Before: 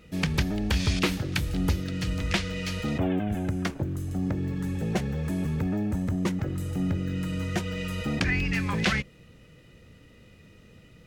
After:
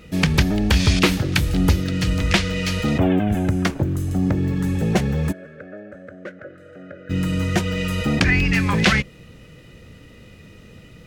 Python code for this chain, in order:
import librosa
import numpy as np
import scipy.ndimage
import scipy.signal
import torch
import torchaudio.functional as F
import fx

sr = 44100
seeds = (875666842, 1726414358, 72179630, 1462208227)

y = fx.double_bandpass(x, sr, hz=930.0, octaves=1.4, at=(5.31, 7.09), fade=0.02)
y = y * librosa.db_to_amplitude(8.5)